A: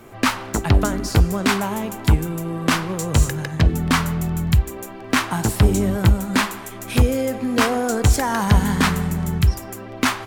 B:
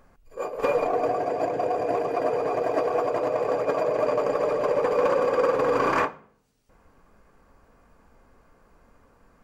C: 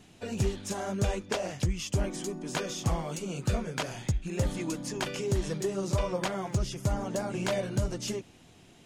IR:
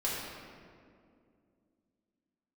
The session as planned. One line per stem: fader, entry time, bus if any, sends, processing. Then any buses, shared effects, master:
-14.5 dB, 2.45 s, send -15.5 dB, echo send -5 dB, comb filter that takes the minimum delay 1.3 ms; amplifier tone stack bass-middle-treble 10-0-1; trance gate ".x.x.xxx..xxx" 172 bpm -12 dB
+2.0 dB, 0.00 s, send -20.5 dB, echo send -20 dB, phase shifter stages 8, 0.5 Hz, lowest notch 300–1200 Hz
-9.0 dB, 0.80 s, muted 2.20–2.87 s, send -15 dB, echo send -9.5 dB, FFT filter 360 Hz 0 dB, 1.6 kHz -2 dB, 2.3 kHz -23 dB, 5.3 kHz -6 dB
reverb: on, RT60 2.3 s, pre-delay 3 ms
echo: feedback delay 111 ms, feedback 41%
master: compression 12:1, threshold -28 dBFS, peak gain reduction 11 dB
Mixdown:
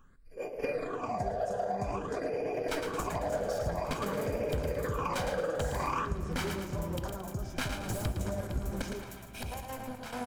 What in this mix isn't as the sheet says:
stem A: missing amplifier tone stack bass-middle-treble 10-0-1; stem B +2.0 dB -> -4.0 dB

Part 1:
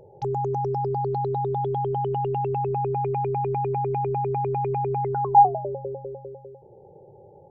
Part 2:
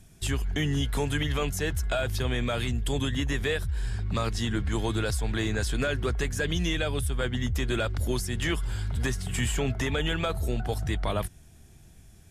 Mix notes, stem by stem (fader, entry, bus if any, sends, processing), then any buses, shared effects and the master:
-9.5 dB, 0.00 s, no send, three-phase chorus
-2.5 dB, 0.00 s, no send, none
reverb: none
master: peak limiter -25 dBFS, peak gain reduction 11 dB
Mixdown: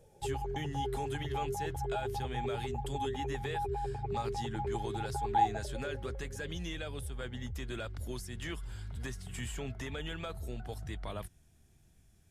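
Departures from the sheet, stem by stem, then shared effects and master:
stem 2 -2.5 dB -> -12.0 dB; master: missing peak limiter -25 dBFS, peak gain reduction 11 dB

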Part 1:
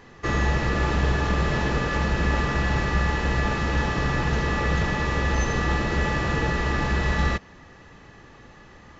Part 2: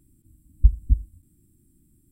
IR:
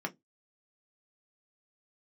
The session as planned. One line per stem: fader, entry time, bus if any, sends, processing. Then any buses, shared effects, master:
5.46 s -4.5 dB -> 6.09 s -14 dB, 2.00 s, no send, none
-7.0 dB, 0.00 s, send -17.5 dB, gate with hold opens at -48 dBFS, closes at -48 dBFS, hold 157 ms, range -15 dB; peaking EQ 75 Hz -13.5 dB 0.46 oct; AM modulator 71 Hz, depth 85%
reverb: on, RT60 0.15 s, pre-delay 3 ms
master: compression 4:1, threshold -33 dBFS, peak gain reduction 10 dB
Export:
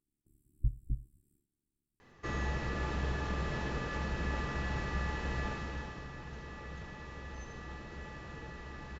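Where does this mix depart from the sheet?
stem 1 -4.5 dB -> -12.5 dB; master: missing compression 4:1, threshold -33 dBFS, peak gain reduction 10 dB

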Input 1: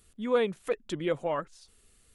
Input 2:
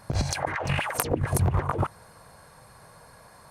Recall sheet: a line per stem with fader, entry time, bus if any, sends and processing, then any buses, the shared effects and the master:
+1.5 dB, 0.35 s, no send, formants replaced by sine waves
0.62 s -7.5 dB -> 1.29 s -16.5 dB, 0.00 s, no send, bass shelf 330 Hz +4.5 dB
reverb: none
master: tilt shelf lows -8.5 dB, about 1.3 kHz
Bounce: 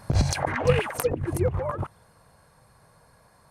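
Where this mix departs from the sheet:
stem 2 -7.5 dB -> +1.0 dB; master: missing tilt shelf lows -8.5 dB, about 1.3 kHz

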